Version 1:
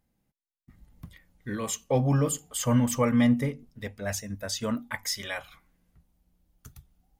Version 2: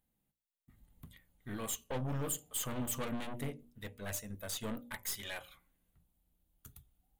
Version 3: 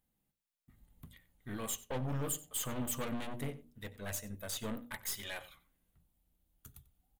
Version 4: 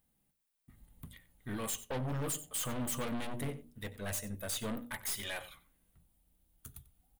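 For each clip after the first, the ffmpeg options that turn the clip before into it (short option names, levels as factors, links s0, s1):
-af "aeval=exprs='(tanh(28.2*val(0)+0.6)-tanh(0.6))/28.2':c=same,aexciter=amount=1.6:drive=1.6:freq=2900,bandreject=f=60:t=h:w=6,bandreject=f=120:t=h:w=6,bandreject=f=180:t=h:w=6,bandreject=f=240:t=h:w=6,bandreject=f=300:t=h:w=6,bandreject=f=360:t=h:w=6,bandreject=f=420:t=h:w=6,bandreject=f=480:t=h:w=6,bandreject=f=540:t=h:w=6,bandreject=f=600:t=h:w=6,volume=0.562"
-filter_complex "[0:a]asplit=2[s0][s1];[s1]adelay=93.29,volume=0.126,highshelf=f=4000:g=-2.1[s2];[s0][s2]amix=inputs=2:normalize=0"
-af "asoftclip=type=hard:threshold=0.0237,aexciter=amount=1.6:drive=3:freq=9000,aeval=exprs='0.0668*sin(PI/2*2.51*val(0)/0.0668)':c=same,volume=0.398"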